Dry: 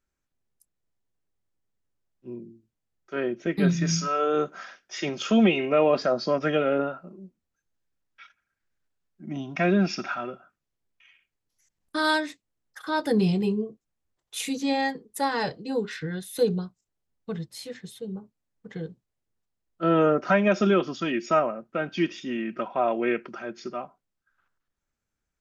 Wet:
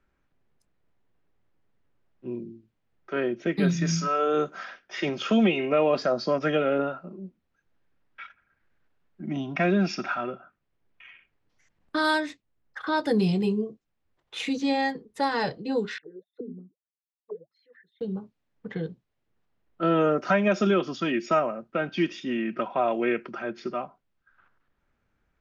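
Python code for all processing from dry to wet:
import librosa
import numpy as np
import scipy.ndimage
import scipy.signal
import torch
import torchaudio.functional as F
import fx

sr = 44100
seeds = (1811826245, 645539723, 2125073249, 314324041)

y = fx.chain(x, sr, fx.envelope_sharpen(power=2.0),
    fx.highpass(hz=95.0, slope=12),
    fx.auto_wah(base_hz=250.0, top_hz=4100.0, q=17.0, full_db=-26.5, direction='down'), at=(15.98, 18.01))
y = fx.env_lowpass(y, sr, base_hz=2500.0, full_db=-19.0)
y = fx.band_squash(y, sr, depth_pct=40)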